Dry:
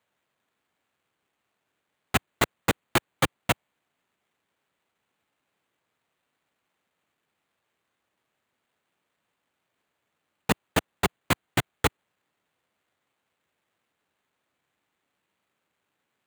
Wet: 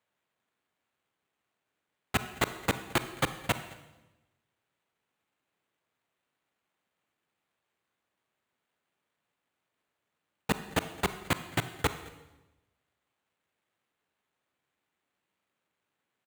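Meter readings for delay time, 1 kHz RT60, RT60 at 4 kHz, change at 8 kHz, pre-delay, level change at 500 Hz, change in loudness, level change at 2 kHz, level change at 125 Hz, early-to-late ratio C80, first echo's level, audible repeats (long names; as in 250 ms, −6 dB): 216 ms, 1.0 s, 0.95 s, −5.0 dB, 32 ms, −4.5 dB, −5.0 dB, −4.5 dB, −4.5 dB, 13.0 dB, −22.5 dB, 1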